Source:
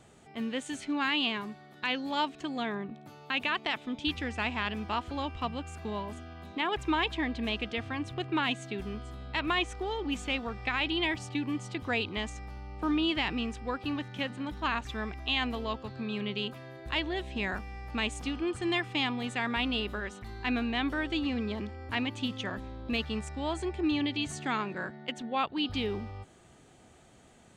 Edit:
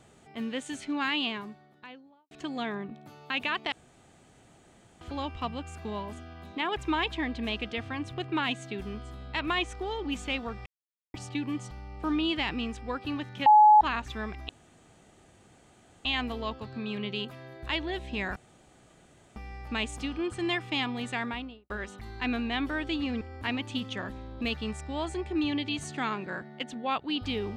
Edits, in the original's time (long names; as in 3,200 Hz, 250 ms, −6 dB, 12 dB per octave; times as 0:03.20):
0:01.09–0:02.31: fade out and dull
0:03.72–0:05.01: fill with room tone
0:10.66–0:11.14: silence
0:11.71–0:12.50: remove
0:14.25–0:14.60: beep over 848 Hz −13 dBFS
0:15.28: splice in room tone 1.56 s
0:17.59: splice in room tone 1.00 s
0:19.36–0:19.93: fade out and dull
0:21.44–0:21.69: remove